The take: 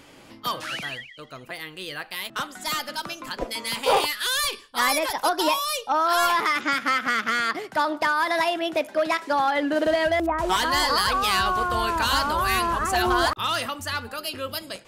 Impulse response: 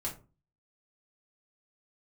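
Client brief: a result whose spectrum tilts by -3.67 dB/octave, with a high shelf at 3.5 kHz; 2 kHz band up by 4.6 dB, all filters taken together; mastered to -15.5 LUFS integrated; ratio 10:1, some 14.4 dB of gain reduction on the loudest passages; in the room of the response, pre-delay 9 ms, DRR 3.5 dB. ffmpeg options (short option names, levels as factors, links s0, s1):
-filter_complex "[0:a]equalizer=f=2000:t=o:g=8,highshelf=f=3500:g=-8.5,acompressor=threshold=0.0282:ratio=10,asplit=2[s0][s1];[1:a]atrim=start_sample=2205,adelay=9[s2];[s1][s2]afir=irnorm=-1:irlink=0,volume=0.531[s3];[s0][s3]amix=inputs=2:normalize=0,volume=7.08"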